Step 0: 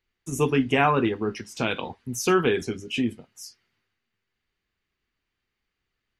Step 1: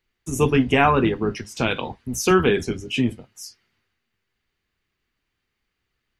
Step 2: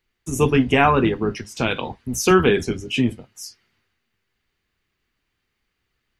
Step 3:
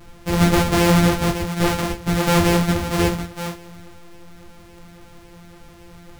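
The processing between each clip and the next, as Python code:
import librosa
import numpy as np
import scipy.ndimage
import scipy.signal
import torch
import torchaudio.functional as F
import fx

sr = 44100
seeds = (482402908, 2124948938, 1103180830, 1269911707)

y1 = fx.octave_divider(x, sr, octaves=1, level_db=-6.0)
y1 = F.gain(torch.from_numpy(y1), 3.5).numpy()
y2 = fx.rider(y1, sr, range_db=4, speed_s=2.0)
y3 = np.r_[np.sort(y2[:len(y2) // 256 * 256].reshape(-1, 256), axis=1).ravel(), y2[len(y2) // 256 * 256:]]
y3 = fx.power_curve(y3, sr, exponent=0.5)
y3 = fx.ensemble(y3, sr)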